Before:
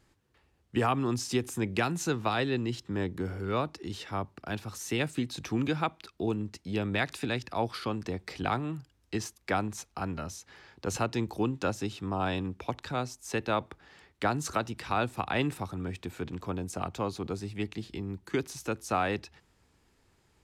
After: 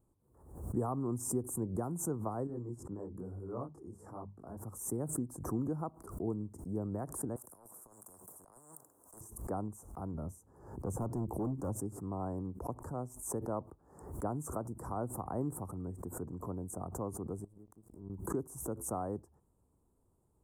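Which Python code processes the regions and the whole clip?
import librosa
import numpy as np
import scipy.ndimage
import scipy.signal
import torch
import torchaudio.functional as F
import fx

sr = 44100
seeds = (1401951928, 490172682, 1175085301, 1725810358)

y = fx.chain(x, sr, fx.lowpass(hz=11000.0, slope=12),
    fx.hum_notches(base_hz=50, count=4),
    fx.detune_double(cents=38), at=(2.47, 4.57))
y = fx.chain(y, sr, fx.highpass(hz=490.0, slope=12),
    fx.over_compress(threshold_db=-38.0, ratio=-0.5),
    fx.spectral_comp(ratio=10.0), at=(7.36, 9.21))
y = fx.chain(y, sr, fx.low_shelf(hz=440.0, db=5.5),
    fx.clip_hard(threshold_db=-25.0), at=(10.14, 11.76))
y = fx.chain(y, sr, fx.gate_flip(shuts_db=-34.0, range_db=-29),
    fx.leveller(passes=3), at=(17.44, 18.1))
y = scipy.signal.sosfilt(scipy.signal.cheby1(3, 1.0, [990.0, 8600.0], 'bandstop', fs=sr, output='sos'), y)
y = fx.peak_eq(y, sr, hz=840.0, db=-5.0, octaves=0.47)
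y = fx.pre_swell(y, sr, db_per_s=82.0)
y = F.gain(torch.from_numpy(y), -5.5).numpy()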